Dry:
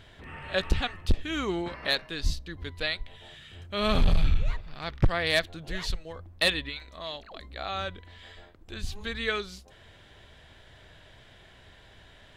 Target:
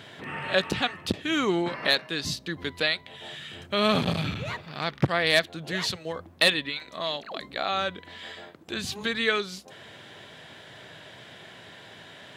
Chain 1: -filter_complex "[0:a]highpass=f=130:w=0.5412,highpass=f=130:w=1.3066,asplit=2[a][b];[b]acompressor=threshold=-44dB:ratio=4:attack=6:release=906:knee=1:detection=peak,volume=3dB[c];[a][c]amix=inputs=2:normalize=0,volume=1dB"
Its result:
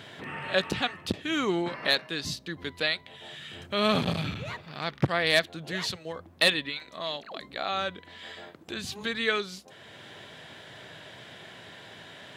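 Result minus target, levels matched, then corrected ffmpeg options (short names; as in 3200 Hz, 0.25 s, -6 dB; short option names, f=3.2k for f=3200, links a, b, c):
compressor: peak gain reduction +8 dB
-filter_complex "[0:a]highpass=f=130:w=0.5412,highpass=f=130:w=1.3066,asplit=2[a][b];[b]acompressor=threshold=-33dB:ratio=4:attack=6:release=906:knee=1:detection=peak,volume=3dB[c];[a][c]amix=inputs=2:normalize=0,volume=1dB"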